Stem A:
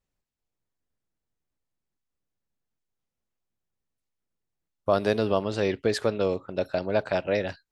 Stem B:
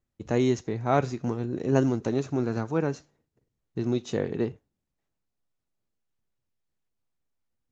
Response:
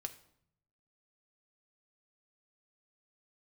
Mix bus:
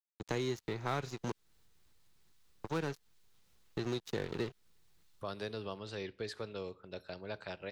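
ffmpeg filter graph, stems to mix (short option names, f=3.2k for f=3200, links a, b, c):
-filter_complex "[0:a]acompressor=mode=upward:threshold=-31dB:ratio=2.5,adelay=350,volume=-15.5dB,asplit=2[a][b];[b]volume=-6dB[c];[1:a]aeval=exprs='sgn(val(0))*max(abs(val(0))-0.0119,0)':c=same,volume=2.5dB,asplit=3[d][e][f];[d]atrim=end=1.32,asetpts=PTS-STARTPTS,afade=t=out:st=1.316:d=0.004:c=hsin[g];[e]atrim=start=1.32:end=2.64,asetpts=PTS-STARTPTS,volume=0[h];[f]atrim=start=2.64,asetpts=PTS-STARTPTS,afade=t=in:d=0.004:c=hsin[i];[g][h][i]concat=n=3:v=0:a=1,asplit=2[j][k];[k]apad=whole_len=355734[l];[a][l]sidechaincompress=threshold=-32dB:ratio=8:attack=24:release=277[m];[2:a]atrim=start_sample=2205[n];[c][n]afir=irnorm=-1:irlink=0[o];[m][j][o]amix=inputs=3:normalize=0,equalizer=f=250:t=o:w=0.67:g=-7,equalizer=f=630:t=o:w=0.67:g=-7,equalizer=f=4k:t=o:w=0.67:g=5,acrossover=split=240|1800[p][q][r];[p]acompressor=threshold=-43dB:ratio=4[s];[q]acompressor=threshold=-36dB:ratio=4[t];[r]acompressor=threshold=-45dB:ratio=4[u];[s][t][u]amix=inputs=3:normalize=0"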